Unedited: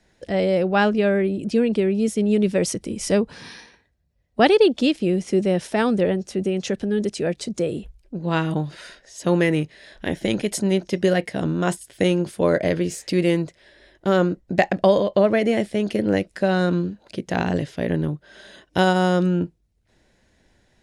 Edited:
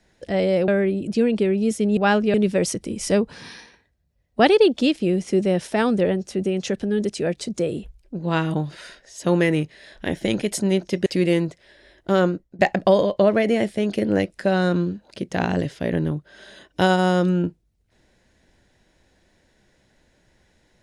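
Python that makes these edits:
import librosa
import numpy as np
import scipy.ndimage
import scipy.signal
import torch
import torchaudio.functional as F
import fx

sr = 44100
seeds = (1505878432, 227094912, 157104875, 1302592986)

y = fx.edit(x, sr, fx.move(start_s=0.68, length_s=0.37, to_s=2.34),
    fx.cut(start_s=11.06, length_s=1.97),
    fx.fade_out_to(start_s=14.2, length_s=0.36, floor_db=-23.0), tone=tone)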